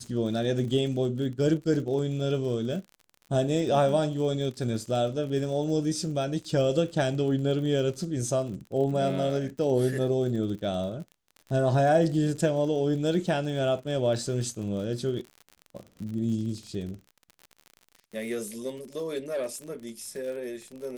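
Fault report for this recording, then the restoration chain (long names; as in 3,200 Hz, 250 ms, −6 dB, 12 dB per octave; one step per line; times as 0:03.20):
surface crackle 45 per second −36 dBFS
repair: click removal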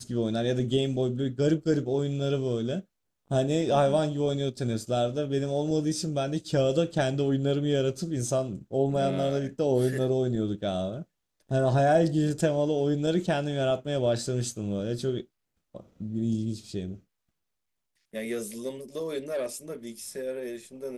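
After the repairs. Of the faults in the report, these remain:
none of them is left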